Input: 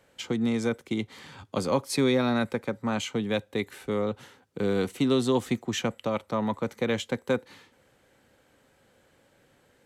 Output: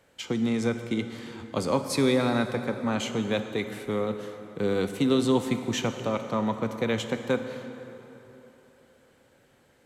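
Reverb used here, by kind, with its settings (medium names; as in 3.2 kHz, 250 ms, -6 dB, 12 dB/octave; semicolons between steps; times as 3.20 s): plate-style reverb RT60 3.5 s, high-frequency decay 0.65×, DRR 7.5 dB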